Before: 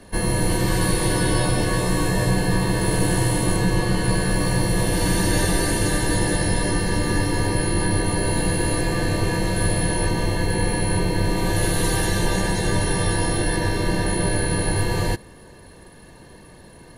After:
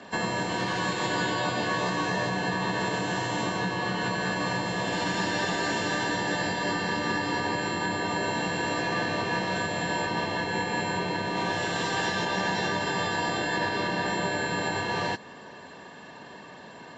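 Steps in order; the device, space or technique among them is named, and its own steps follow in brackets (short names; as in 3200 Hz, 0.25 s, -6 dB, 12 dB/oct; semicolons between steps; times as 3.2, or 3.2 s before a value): hearing aid with frequency lowering (nonlinear frequency compression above 4000 Hz 1.5:1; compressor, threshold -23 dBFS, peak gain reduction 8.5 dB; speaker cabinet 290–5000 Hz, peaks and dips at 340 Hz -9 dB, 500 Hz -7 dB, 2100 Hz -4 dB, 4100 Hz -4 dB); gain +6.5 dB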